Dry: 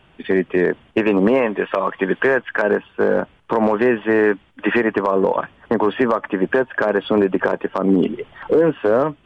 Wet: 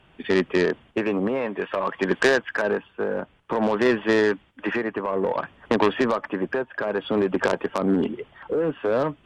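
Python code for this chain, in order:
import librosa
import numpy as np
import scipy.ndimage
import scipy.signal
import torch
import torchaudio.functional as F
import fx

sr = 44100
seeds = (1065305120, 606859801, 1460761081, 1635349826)

y = fx.tremolo_shape(x, sr, shape='triangle', hz=0.56, depth_pct=60)
y = fx.cheby_harmonics(y, sr, harmonics=(3, 5), levels_db=(-10, -17), full_scale_db=-6.5)
y = F.gain(torch.from_numpy(y), 1.5).numpy()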